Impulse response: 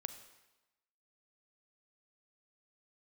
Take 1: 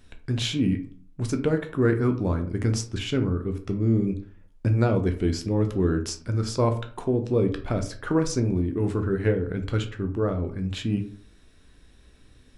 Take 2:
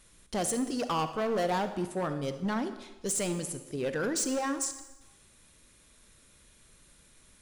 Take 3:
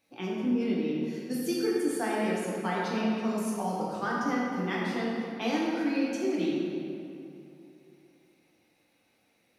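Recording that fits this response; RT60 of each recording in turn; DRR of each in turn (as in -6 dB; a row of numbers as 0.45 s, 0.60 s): 2; 0.45 s, 1.0 s, 2.8 s; 5.5 dB, 9.5 dB, -6.0 dB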